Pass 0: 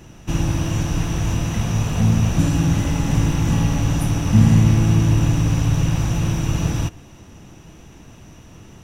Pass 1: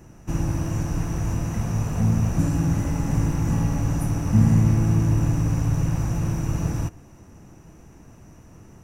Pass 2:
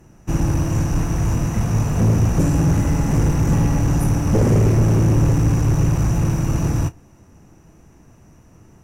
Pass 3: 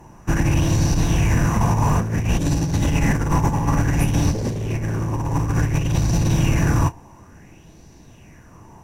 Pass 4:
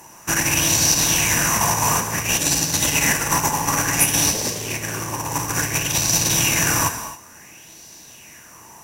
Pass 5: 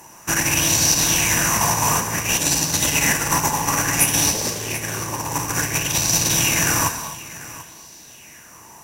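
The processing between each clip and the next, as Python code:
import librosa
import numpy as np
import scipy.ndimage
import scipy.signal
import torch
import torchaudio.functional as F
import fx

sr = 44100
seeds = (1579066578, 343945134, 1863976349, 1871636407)

y1 = fx.peak_eq(x, sr, hz=3400.0, db=-14.0, octaves=0.84)
y1 = F.gain(torch.from_numpy(y1), -4.0).numpy()
y2 = fx.doubler(y1, sr, ms=34.0, db=-12.5)
y2 = fx.fold_sine(y2, sr, drive_db=9, ceiling_db=-6.5)
y2 = fx.upward_expand(y2, sr, threshold_db=-29.0, expansion=1.5)
y2 = F.gain(torch.from_numpy(y2), -4.0).numpy()
y3 = fx.notch(y2, sr, hz=1300.0, q=5.8)
y3 = fx.over_compress(y3, sr, threshold_db=-18.0, ratio=-0.5)
y3 = fx.bell_lfo(y3, sr, hz=0.57, low_hz=930.0, high_hz=4400.0, db=14)
y4 = fx.tilt_eq(y3, sr, slope=4.5)
y4 = fx.rev_gated(y4, sr, seeds[0], gate_ms=300, shape='flat', drr_db=7.5)
y4 = F.gain(torch.from_numpy(y4), 3.0).numpy()
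y5 = y4 + 10.0 ** (-17.5 / 20.0) * np.pad(y4, (int(740 * sr / 1000.0), 0))[:len(y4)]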